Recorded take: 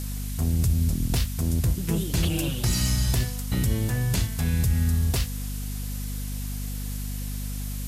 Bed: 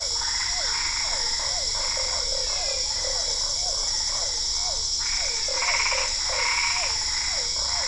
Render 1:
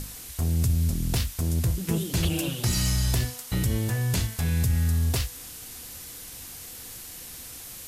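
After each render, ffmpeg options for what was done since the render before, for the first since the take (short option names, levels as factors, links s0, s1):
-af "bandreject=f=50:t=h:w=6,bandreject=f=100:t=h:w=6,bandreject=f=150:t=h:w=6,bandreject=f=200:t=h:w=6,bandreject=f=250:t=h:w=6,bandreject=f=300:t=h:w=6"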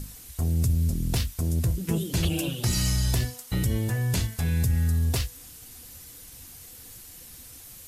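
-af "afftdn=nr=7:nf=-42"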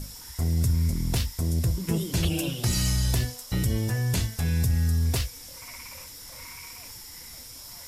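-filter_complex "[1:a]volume=0.0891[s0];[0:a][s0]amix=inputs=2:normalize=0"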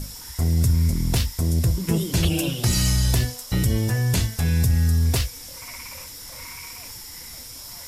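-af "volume=1.68"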